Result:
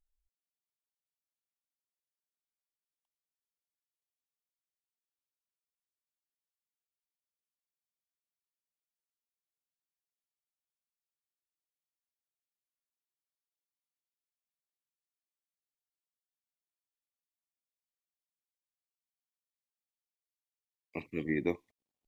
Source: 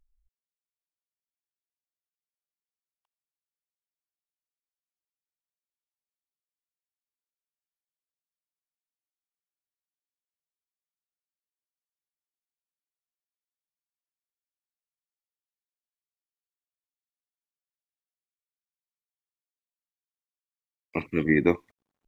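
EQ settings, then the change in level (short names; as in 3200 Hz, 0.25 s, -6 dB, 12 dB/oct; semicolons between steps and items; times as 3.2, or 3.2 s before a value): low shelf 470 Hz -5 dB; bell 1400 Hz -12.5 dB 0.81 oct; -6.5 dB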